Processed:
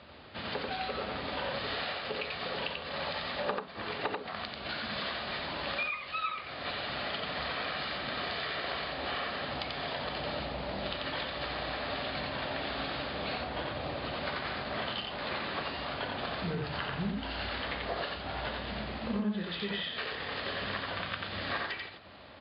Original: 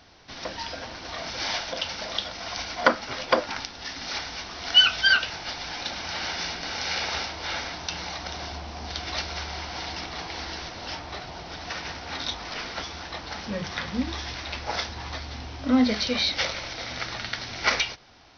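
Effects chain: high-pass 84 Hz 24 dB/octave; compression 16:1, threshold -34 dBFS, peak gain reduction 23 dB; tape speed -18%; distance through air 160 m; delay 89 ms -3 dB; trim +2.5 dB

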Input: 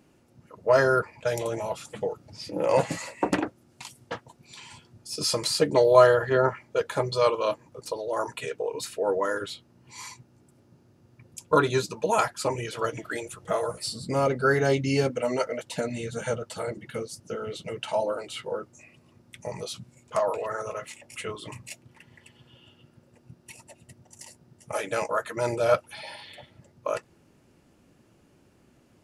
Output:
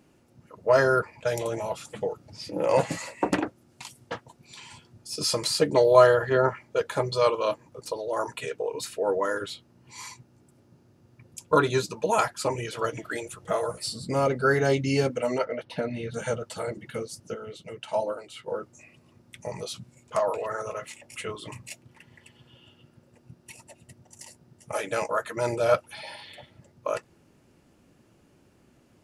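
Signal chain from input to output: 15.38–16.14 s: boxcar filter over 6 samples; 17.34–18.48 s: upward expansion 1.5:1, over -36 dBFS

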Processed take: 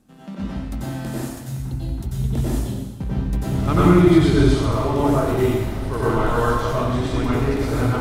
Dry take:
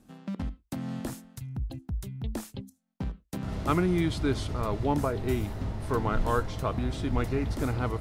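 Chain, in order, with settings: 2.08–4.43 s: bass shelf 380 Hz +6 dB; plate-style reverb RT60 1.3 s, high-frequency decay 0.95×, pre-delay 80 ms, DRR -8.5 dB

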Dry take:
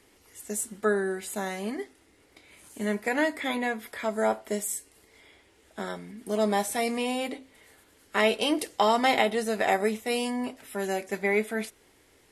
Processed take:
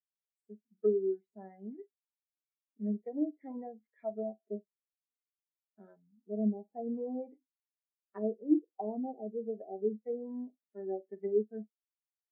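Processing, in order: low-pass that closes with the level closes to 460 Hz, closed at -22.5 dBFS; doubling 47 ms -12.5 dB; spectral contrast expander 2.5:1; trim -2 dB

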